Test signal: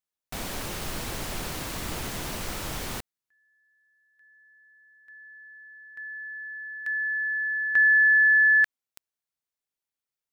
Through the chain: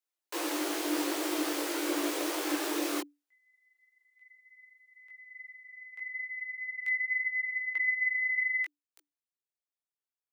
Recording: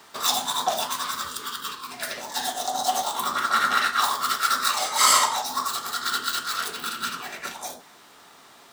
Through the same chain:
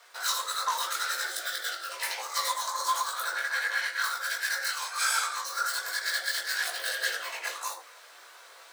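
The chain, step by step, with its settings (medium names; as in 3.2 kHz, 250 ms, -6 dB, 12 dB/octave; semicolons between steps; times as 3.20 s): chorus voices 6, 0.83 Hz, delay 19 ms, depth 2.8 ms; gain riding within 5 dB 0.5 s; frequency shift +290 Hz; trim -2.5 dB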